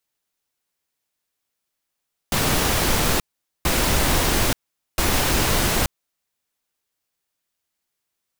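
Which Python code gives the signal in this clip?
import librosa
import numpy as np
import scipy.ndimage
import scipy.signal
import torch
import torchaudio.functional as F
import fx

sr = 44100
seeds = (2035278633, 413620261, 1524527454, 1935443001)

y = fx.noise_burst(sr, seeds[0], colour='pink', on_s=0.88, off_s=0.45, bursts=3, level_db=-19.5)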